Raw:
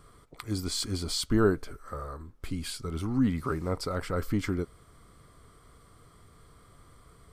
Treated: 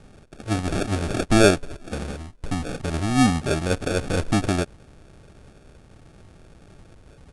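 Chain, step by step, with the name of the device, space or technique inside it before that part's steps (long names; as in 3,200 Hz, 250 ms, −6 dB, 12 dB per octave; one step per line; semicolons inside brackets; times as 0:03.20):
crushed at another speed (tape speed factor 2×; decimation without filtering 22×; tape speed factor 0.5×)
level +7.5 dB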